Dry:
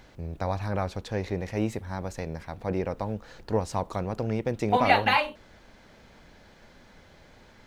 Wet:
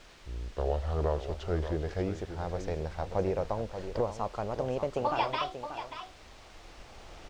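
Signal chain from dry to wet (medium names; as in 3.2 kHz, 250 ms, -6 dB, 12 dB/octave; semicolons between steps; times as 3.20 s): gliding tape speed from 68% -> 142%; recorder AGC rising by 6.8 dB/s; graphic EQ 125/250/1000/2000/4000 Hz -10/-11/-4/-10/-6 dB; in parallel at -9 dB: word length cut 6-bit, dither triangular; on the sum: distance through air 140 m; on a send: delay 584 ms -10 dB; on the sum: trim -4 dB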